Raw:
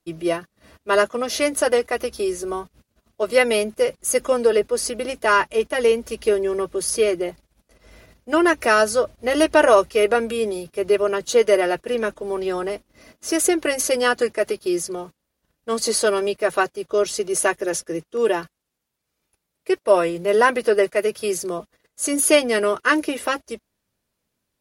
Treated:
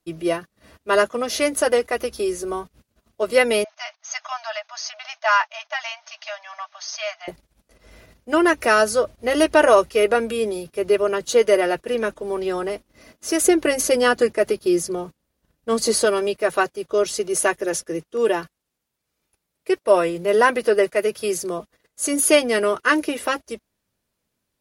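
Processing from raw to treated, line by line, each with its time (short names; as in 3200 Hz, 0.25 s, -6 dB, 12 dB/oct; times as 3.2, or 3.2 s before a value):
3.64–7.28 brick-wall FIR band-pass 610–6600 Hz
13.41–16.05 low shelf 450 Hz +5.5 dB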